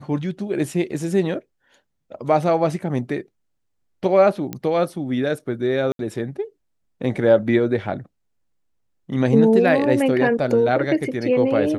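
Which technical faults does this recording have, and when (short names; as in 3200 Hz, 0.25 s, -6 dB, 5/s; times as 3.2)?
4.53 pop -14 dBFS
5.92–5.99 gap 72 ms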